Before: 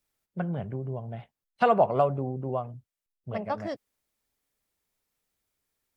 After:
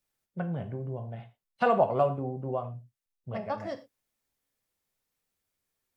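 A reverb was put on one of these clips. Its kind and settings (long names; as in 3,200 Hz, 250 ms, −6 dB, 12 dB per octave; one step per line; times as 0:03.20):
reverb whose tail is shaped and stops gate 140 ms falling, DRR 6 dB
level −3 dB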